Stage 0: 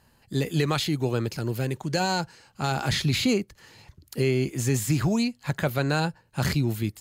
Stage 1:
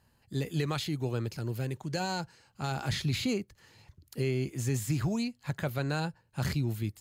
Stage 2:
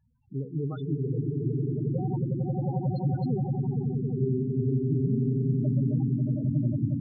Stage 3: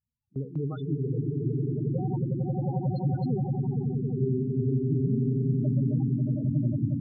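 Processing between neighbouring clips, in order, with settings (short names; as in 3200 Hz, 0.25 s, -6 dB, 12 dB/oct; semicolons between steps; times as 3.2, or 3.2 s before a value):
bell 96 Hz +4.5 dB 1.2 oct; gain -8 dB
swelling echo 90 ms, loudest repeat 8, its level -5 dB; loudest bins only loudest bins 8
gate with hold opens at -27 dBFS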